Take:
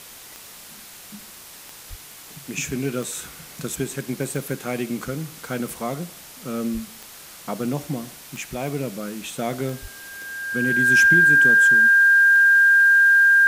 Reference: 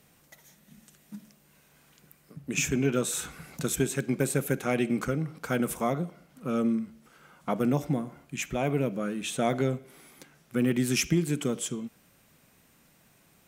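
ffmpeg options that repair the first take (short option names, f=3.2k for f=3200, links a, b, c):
-filter_complex "[0:a]adeclick=t=4,bandreject=f=1.6k:w=30,asplit=3[a][b][c];[a]afade=t=out:st=1.89:d=0.02[d];[b]highpass=f=140:w=0.5412,highpass=f=140:w=1.3066,afade=t=in:st=1.89:d=0.02,afade=t=out:st=2.01:d=0.02[e];[c]afade=t=in:st=2.01:d=0.02[f];[d][e][f]amix=inputs=3:normalize=0,asplit=3[g][h][i];[g]afade=t=out:st=6.73:d=0.02[j];[h]highpass=f=140:w=0.5412,highpass=f=140:w=1.3066,afade=t=in:st=6.73:d=0.02,afade=t=out:st=6.85:d=0.02[k];[i]afade=t=in:st=6.85:d=0.02[l];[j][k][l]amix=inputs=3:normalize=0,asplit=3[m][n][o];[m]afade=t=out:st=9.81:d=0.02[p];[n]highpass=f=140:w=0.5412,highpass=f=140:w=1.3066,afade=t=in:st=9.81:d=0.02,afade=t=out:st=9.93:d=0.02[q];[o]afade=t=in:st=9.93:d=0.02[r];[p][q][r]amix=inputs=3:normalize=0,afwtdn=0.0089"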